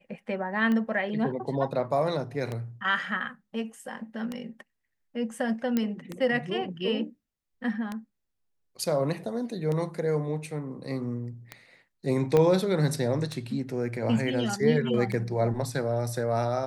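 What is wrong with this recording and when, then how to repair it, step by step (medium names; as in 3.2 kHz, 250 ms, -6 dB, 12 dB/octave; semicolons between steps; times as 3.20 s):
tick 33 1/3 rpm -19 dBFS
5.77 s: pop -13 dBFS
12.37 s: pop -12 dBFS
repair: de-click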